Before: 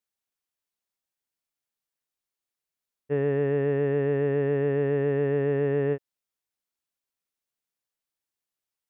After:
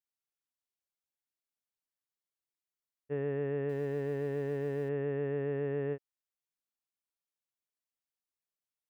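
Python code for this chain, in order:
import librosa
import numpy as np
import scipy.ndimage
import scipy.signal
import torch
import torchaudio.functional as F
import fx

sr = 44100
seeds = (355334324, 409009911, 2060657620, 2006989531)

y = fx.law_mismatch(x, sr, coded='A', at=(3.69, 4.89))
y = F.gain(torch.from_numpy(y), -9.0).numpy()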